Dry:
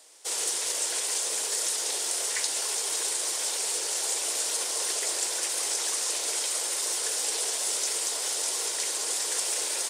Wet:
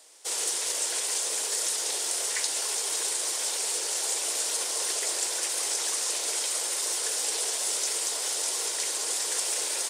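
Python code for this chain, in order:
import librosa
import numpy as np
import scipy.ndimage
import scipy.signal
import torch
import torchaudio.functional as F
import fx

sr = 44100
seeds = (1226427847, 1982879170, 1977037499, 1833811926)

y = fx.low_shelf(x, sr, hz=61.0, db=-9.5)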